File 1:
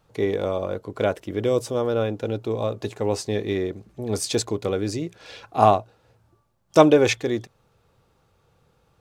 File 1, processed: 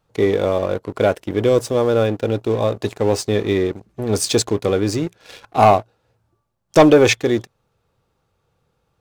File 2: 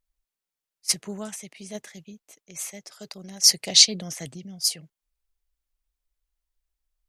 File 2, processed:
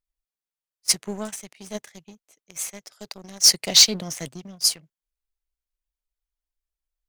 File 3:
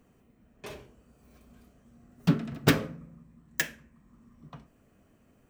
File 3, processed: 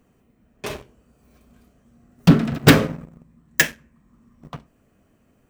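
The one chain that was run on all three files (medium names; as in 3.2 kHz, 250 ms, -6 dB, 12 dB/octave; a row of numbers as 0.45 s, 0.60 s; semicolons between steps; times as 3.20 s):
waveshaping leveller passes 2; normalise loudness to -18 LUFS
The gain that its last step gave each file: -1.0 dB, -3.5 dB, +6.0 dB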